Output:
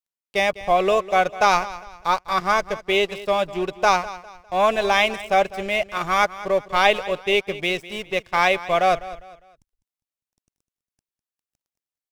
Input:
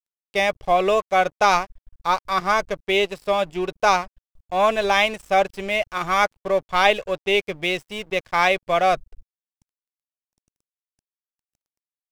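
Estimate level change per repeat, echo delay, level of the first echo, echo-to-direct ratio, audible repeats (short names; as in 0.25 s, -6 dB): -9.5 dB, 0.202 s, -16.5 dB, -16.0 dB, 2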